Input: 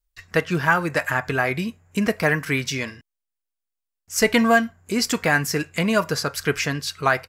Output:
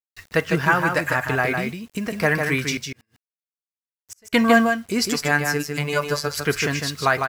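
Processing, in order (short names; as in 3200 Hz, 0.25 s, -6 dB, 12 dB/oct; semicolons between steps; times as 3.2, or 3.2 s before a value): 1.56–2.14 compressor 4:1, threshold -25 dBFS, peak gain reduction 8.5 dB; bit-crush 8-bit; 2.77–4.33 flipped gate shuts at -25 dBFS, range -38 dB; 5.1–6.3 robotiser 146 Hz; echo 0.153 s -5 dB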